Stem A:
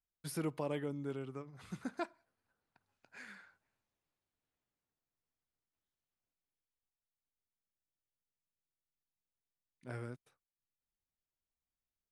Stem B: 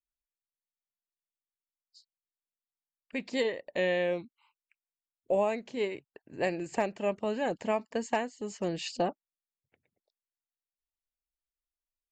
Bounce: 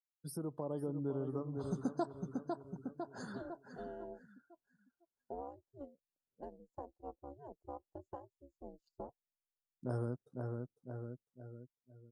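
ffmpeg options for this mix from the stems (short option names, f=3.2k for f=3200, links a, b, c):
-filter_complex "[0:a]dynaudnorm=f=230:g=9:m=15.5dB,volume=-1.5dB,asplit=2[a][b];[b]volume=-7dB[c];[1:a]aeval=exprs='val(0)*sin(2*PI*140*n/s)':c=same,aeval=exprs='0.133*(cos(1*acos(clip(val(0)/0.133,-1,1)))-cos(1*PI/2))+0.0119*(cos(7*acos(clip(val(0)/0.133,-1,1)))-cos(7*PI/2))':c=same,volume=-13dB[d];[c]aecho=0:1:502|1004|1506|2008|2510|3012:1|0.45|0.202|0.0911|0.041|0.0185[e];[a][d][e]amix=inputs=3:normalize=0,afftdn=nr=25:nf=-50,asuperstop=centerf=2300:order=4:qfactor=0.59,acompressor=threshold=-40dB:ratio=2"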